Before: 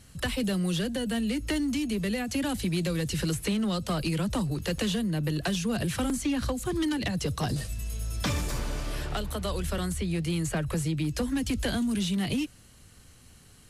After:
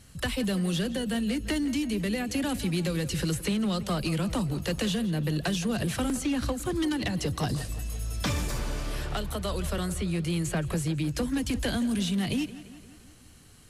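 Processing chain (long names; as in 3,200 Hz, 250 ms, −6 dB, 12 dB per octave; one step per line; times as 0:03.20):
tape delay 170 ms, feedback 64%, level −14 dB, low-pass 4,300 Hz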